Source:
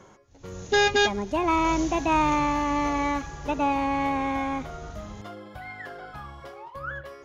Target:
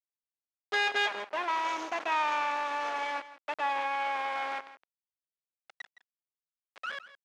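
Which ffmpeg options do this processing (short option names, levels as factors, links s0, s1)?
-filter_complex "[0:a]anlmdn=10,aemphasis=mode=production:type=riaa,acrusher=bits=3:dc=4:mix=0:aa=0.000001,asoftclip=type=tanh:threshold=0.141,highpass=530,lowpass=2400,asplit=2[s0][s1];[s1]aecho=0:1:164:0.168[s2];[s0][s2]amix=inputs=2:normalize=0,volume=1.41"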